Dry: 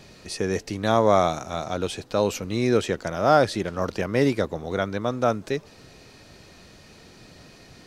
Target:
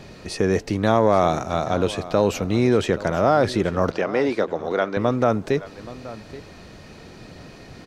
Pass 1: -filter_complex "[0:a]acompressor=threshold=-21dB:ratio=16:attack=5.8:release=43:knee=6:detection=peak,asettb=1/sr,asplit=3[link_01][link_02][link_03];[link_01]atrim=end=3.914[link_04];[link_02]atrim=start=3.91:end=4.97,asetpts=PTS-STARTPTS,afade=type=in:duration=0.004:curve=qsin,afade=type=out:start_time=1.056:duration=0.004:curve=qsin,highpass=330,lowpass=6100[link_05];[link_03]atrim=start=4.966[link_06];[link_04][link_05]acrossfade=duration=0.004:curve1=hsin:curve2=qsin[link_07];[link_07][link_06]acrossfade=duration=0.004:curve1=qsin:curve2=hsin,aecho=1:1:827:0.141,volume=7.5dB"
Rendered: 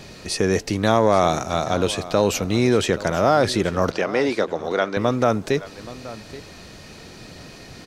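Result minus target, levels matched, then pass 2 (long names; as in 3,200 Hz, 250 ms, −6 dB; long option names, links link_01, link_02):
8,000 Hz band +7.0 dB
-filter_complex "[0:a]acompressor=threshold=-21dB:ratio=16:attack=5.8:release=43:knee=6:detection=peak,highshelf=frequency=3000:gain=-9,asettb=1/sr,asplit=3[link_01][link_02][link_03];[link_01]atrim=end=3.914[link_04];[link_02]atrim=start=3.91:end=4.97,asetpts=PTS-STARTPTS,afade=type=in:duration=0.004:curve=qsin,afade=type=out:start_time=1.056:duration=0.004:curve=qsin,highpass=330,lowpass=6100[link_05];[link_03]atrim=start=4.966[link_06];[link_04][link_05]acrossfade=duration=0.004:curve1=hsin:curve2=qsin[link_07];[link_07][link_06]acrossfade=duration=0.004:curve1=qsin:curve2=hsin,aecho=1:1:827:0.141,volume=7.5dB"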